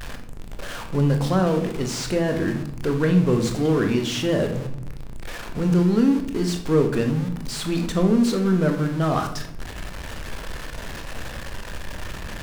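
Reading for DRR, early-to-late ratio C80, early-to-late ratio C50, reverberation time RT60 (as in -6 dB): 4.5 dB, 12.0 dB, 8.5 dB, 0.75 s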